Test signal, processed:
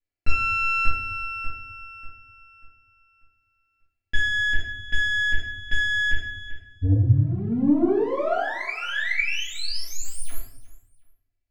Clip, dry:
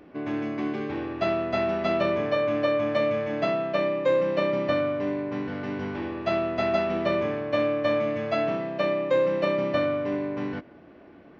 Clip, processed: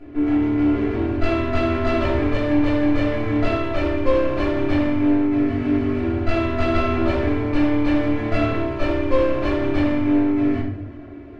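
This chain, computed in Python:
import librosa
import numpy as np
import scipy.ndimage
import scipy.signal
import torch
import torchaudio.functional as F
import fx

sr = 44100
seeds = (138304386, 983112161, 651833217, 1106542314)

p1 = fx.lower_of_two(x, sr, delay_ms=0.43)
p2 = fx.lowpass(p1, sr, hz=1800.0, slope=6)
p3 = fx.peak_eq(p2, sr, hz=94.0, db=13.0, octaves=0.59)
p4 = fx.notch(p3, sr, hz=970.0, q=9.8)
p5 = p4 + 0.78 * np.pad(p4, (int(3.0 * sr / 1000.0), 0))[:len(p4)]
p6 = 10.0 ** (-21.0 / 20.0) * np.tanh(p5 / 10.0 ** (-21.0 / 20.0))
p7 = p6 + fx.echo_feedback(p6, sr, ms=363, feedback_pct=26, wet_db=-21, dry=0)
y = fx.room_shoebox(p7, sr, seeds[0], volume_m3=120.0, walls='mixed', distance_m=1.8)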